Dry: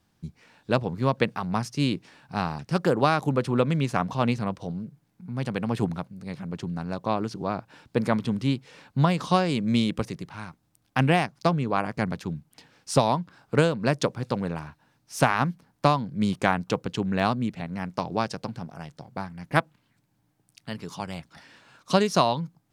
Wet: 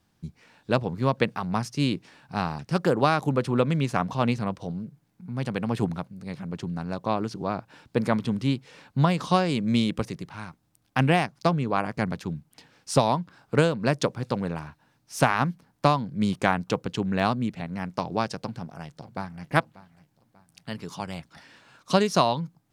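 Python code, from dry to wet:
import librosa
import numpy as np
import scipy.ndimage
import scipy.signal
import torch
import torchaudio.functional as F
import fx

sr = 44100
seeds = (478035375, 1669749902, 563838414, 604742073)

y = fx.echo_throw(x, sr, start_s=18.37, length_s=1.12, ms=590, feedback_pct=40, wet_db=-17.5)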